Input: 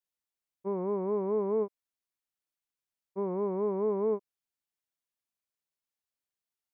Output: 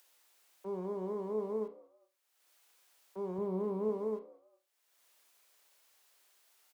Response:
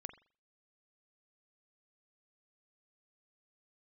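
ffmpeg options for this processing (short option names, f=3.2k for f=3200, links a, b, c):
-filter_complex "[0:a]asettb=1/sr,asplit=3[a][b][c];[a]atrim=end=3.384[d];[b]atrim=start=3.38:end=3.89,asetpts=PTS-STARTPTS,afade=t=in:d=0.004:c=qsin,afade=t=out:st=0.506:d=0.004:c=qsin,equalizer=f=92:w=0.52:g=10[e];[c]atrim=start=3.886[f];[d][e]acrossfade=d=0.004:c1=hsin:c2=qsin[g];[g][f]acrossfade=d=0.004:c1=qsin:c2=hsin,acrossover=split=340[h][i];[h]aeval=exprs='val(0)*gte(abs(val(0)),0.00251)':c=same[j];[i]acompressor=mode=upward:threshold=-36dB:ratio=2.5[k];[j][k]amix=inputs=2:normalize=0,asplit=3[l][m][n];[m]adelay=199,afreqshift=79,volume=-23dB[o];[n]adelay=398,afreqshift=158,volume=-31.9dB[p];[l][o][p]amix=inputs=3:normalize=0[q];[1:a]atrim=start_sample=2205,asetrate=57330,aresample=44100[r];[q][r]afir=irnorm=-1:irlink=0"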